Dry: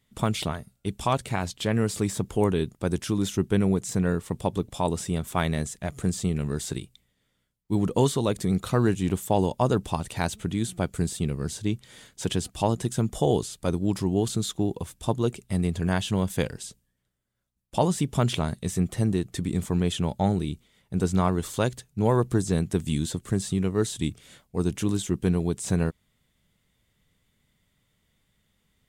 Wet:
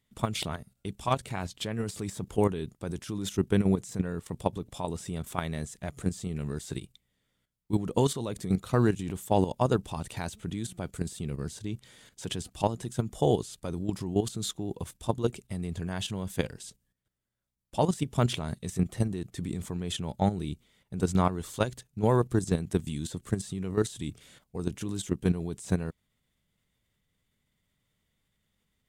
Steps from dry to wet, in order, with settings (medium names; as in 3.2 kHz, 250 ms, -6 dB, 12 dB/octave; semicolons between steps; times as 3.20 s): level held to a coarse grid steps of 11 dB